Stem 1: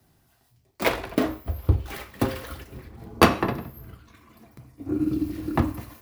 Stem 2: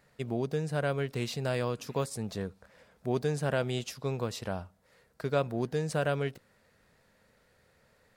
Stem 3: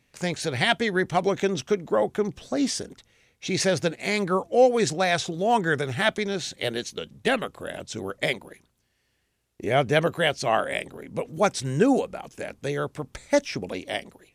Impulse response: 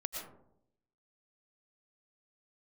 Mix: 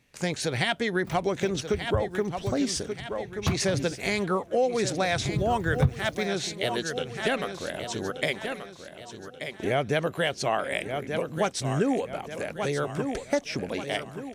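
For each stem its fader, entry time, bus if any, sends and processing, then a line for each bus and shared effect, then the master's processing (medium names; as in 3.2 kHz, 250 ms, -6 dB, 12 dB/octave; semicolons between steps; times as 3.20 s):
3.30 s -19 dB -> 3.51 s -12 dB -> 5.25 s -12 dB -> 5.68 s -1.5 dB, 0.25 s, no send, no echo send, reverb removal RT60 0.99 s; resonant low shelf 220 Hz +13 dB, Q 3
-20.0 dB, 0.00 s, no send, no echo send, compression, threshold -36 dBFS, peak gain reduction 13 dB
+0.5 dB, 0.00 s, no send, echo send -11 dB, none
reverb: none
echo: feedback delay 1181 ms, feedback 39%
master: compression 3:1, threshold -23 dBFS, peak gain reduction 15 dB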